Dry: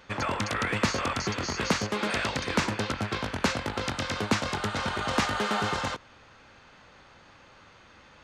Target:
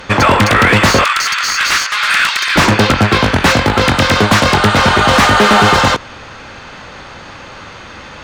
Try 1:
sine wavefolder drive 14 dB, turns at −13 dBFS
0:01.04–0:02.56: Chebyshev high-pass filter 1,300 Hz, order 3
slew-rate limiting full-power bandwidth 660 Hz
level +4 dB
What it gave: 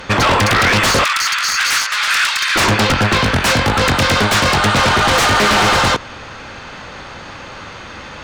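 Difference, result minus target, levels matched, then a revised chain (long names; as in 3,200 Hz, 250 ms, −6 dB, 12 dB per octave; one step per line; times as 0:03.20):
sine wavefolder: distortion +8 dB
sine wavefolder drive 14 dB, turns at −7 dBFS
0:01.04–0:02.56: Chebyshev high-pass filter 1,300 Hz, order 3
slew-rate limiting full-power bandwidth 660 Hz
level +4 dB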